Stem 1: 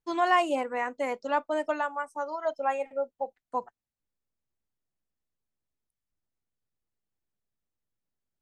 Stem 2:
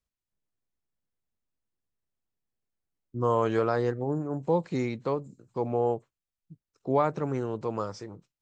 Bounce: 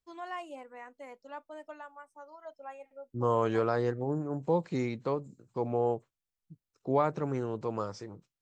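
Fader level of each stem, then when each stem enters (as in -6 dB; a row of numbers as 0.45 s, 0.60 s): -16.5 dB, -2.5 dB; 0.00 s, 0.00 s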